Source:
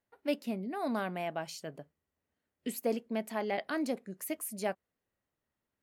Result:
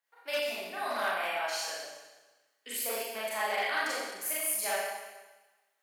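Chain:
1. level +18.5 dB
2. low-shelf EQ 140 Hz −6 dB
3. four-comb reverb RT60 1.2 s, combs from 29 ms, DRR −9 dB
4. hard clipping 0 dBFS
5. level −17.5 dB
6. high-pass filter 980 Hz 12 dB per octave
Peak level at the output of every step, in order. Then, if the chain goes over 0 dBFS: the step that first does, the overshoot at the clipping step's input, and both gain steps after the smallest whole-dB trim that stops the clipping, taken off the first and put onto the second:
−1.0, −1.5, +5.5, 0.0, −17.5, −19.0 dBFS
step 3, 5.5 dB
step 1 +12.5 dB, step 5 −11.5 dB

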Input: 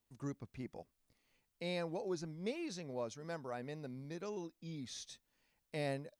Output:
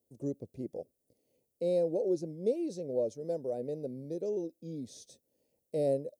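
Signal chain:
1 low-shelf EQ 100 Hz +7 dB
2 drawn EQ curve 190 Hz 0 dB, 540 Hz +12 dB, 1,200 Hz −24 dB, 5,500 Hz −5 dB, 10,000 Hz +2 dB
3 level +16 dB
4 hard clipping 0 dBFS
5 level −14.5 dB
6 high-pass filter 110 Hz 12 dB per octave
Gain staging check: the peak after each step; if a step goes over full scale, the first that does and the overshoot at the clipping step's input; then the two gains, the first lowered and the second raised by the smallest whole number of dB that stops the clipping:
−25.5, −21.0, −5.0, −5.0, −19.5, −20.0 dBFS
no step passes full scale

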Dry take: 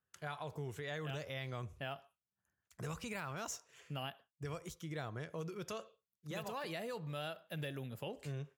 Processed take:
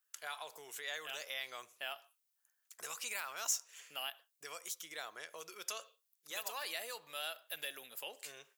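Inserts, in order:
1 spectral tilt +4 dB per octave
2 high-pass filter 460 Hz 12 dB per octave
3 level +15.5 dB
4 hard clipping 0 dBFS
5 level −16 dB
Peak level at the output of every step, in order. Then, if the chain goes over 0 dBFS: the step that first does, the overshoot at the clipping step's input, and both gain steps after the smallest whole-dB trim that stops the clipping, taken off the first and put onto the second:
−20.5, −20.5, −5.0, −5.0, −21.0 dBFS
no step passes full scale

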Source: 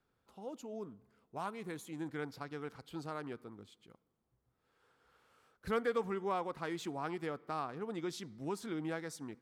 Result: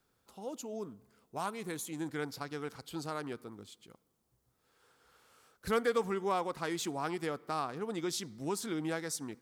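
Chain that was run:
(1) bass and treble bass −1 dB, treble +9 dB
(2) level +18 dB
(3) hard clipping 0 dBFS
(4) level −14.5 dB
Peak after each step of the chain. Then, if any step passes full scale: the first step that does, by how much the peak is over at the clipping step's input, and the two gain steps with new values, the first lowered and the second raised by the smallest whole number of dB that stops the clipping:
−23.0, −5.0, −5.0, −19.5 dBFS
no step passes full scale

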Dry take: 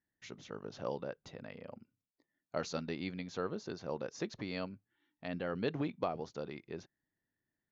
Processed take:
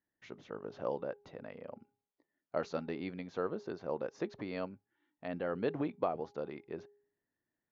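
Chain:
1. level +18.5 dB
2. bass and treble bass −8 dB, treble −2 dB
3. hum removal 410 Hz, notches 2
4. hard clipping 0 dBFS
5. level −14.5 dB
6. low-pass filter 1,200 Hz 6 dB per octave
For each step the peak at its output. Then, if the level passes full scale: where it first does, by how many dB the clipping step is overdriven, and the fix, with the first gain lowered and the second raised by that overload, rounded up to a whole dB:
−2.5, −3.0, −3.0, −3.0, −17.5, −19.0 dBFS
no step passes full scale

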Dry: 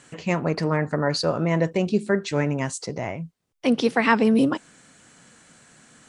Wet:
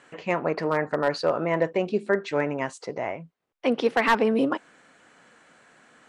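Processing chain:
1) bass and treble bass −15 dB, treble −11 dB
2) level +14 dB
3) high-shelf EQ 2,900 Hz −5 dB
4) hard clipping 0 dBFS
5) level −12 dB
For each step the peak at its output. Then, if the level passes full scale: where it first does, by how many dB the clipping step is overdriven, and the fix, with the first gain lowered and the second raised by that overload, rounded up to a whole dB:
−4.5, +9.5, +8.5, 0.0, −12.0 dBFS
step 2, 8.5 dB
step 2 +5 dB, step 5 −3 dB

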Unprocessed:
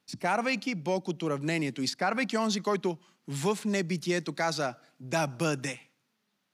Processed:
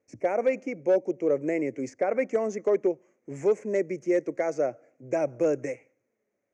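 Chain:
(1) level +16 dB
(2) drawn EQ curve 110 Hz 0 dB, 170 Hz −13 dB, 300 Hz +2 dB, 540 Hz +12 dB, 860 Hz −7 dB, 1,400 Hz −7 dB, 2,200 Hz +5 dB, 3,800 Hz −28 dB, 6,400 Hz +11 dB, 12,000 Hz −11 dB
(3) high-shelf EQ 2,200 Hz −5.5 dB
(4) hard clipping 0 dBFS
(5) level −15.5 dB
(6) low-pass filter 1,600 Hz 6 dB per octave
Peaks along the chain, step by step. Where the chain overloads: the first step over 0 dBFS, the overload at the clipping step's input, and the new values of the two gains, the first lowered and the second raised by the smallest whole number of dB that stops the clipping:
−1.5, +4.0, +3.5, 0.0, −15.5, −15.5 dBFS
step 2, 3.5 dB
step 1 +12 dB, step 5 −11.5 dB

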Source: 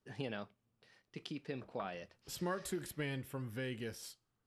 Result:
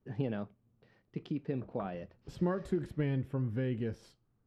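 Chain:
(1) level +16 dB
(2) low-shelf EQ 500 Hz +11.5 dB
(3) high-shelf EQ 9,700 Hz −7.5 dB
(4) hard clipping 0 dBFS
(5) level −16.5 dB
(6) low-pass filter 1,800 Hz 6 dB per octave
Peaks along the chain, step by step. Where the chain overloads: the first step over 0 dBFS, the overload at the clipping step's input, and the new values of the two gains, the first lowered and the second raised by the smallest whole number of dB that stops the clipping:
−10.5, −3.5, −3.5, −3.5, −20.0, −20.5 dBFS
no step passes full scale

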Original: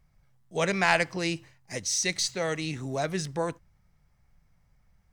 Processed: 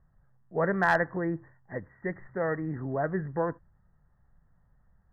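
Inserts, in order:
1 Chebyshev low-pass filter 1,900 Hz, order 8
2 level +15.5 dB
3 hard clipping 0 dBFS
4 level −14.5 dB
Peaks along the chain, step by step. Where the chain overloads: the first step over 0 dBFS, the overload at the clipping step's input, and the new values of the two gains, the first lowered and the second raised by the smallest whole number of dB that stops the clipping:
−11.5, +4.0, 0.0, −14.5 dBFS
step 2, 4.0 dB
step 2 +11.5 dB, step 4 −10.5 dB

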